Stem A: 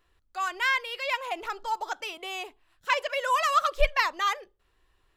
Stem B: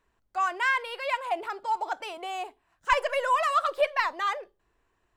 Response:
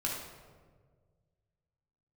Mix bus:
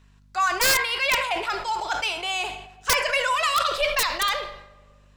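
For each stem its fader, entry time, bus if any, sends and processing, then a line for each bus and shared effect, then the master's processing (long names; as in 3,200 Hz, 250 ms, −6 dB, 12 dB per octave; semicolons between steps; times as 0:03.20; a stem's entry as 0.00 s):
−5.5 dB, 0.00 s, send −18 dB, adaptive Wiener filter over 9 samples; high-shelf EQ 12,000 Hz +10.5 dB; automatic ducking −12 dB, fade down 1.40 s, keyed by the second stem
0.0 dB, 0.00 s, polarity flipped, send −12 dB, low-shelf EQ 150 Hz −9 dB; downward compressor 2.5 to 1, threshold −27 dBFS, peak gain reduction 7 dB; mains hum 50 Hz, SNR 26 dB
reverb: on, RT60 1.6 s, pre-delay 5 ms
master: parametric band 4,800 Hz +14.5 dB 2.6 octaves; wrap-around overflow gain 12 dB; level that may fall only so fast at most 72 dB per second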